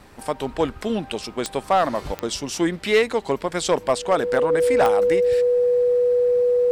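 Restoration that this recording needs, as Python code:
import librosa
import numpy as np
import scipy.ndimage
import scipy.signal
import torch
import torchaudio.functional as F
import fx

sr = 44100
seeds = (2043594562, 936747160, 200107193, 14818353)

y = fx.fix_declip(x, sr, threshold_db=-10.5)
y = fx.fix_declick_ar(y, sr, threshold=10.0)
y = fx.notch(y, sr, hz=490.0, q=30.0)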